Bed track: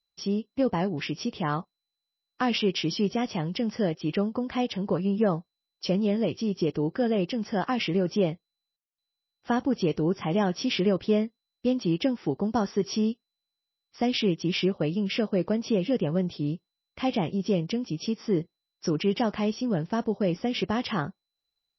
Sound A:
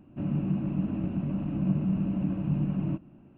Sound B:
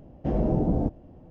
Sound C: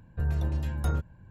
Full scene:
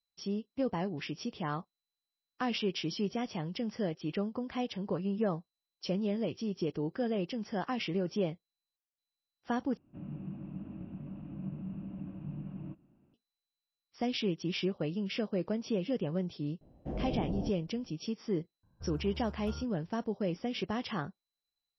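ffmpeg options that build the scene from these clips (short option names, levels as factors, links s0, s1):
-filter_complex "[0:a]volume=0.422[s0];[3:a]highshelf=f=1600:t=q:w=3:g=-6.5[s1];[s0]asplit=2[s2][s3];[s2]atrim=end=9.774[s4];[1:a]atrim=end=3.37,asetpts=PTS-STARTPTS,volume=0.211[s5];[s3]atrim=start=13.136[s6];[2:a]atrim=end=1.3,asetpts=PTS-STARTPTS,volume=0.266,afade=t=in:d=0.004:c=hsin,afade=t=out:st=1.296:d=0.004:c=hsin,adelay=16610[s7];[s1]atrim=end=1.3,asetpts=PTS-STARTPTS,volume=0.168,afade=t=in:d=0.004:c=hsin,afade=t=out:st=1.296:d=0.004:c=hsin,adelay=18630[s8];[s4][s5]acrossfade=d=0.004:c1=hsin:c2=hsin[s9];[s9][s6]acrossfade=d=0.004:c1=hsin:c2=hsin[s10];[s10][s7][s8]amix=inputs=3:normalize=0"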